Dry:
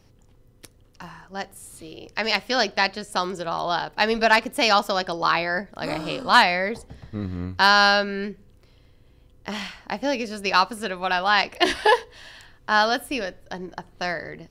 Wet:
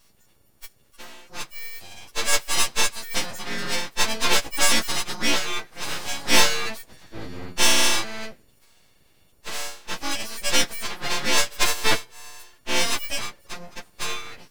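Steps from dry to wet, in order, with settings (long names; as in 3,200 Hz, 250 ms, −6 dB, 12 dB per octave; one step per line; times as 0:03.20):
every partial snapped to a pitch grid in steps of 4 semitones
full-wave rectification
level −2.5 dB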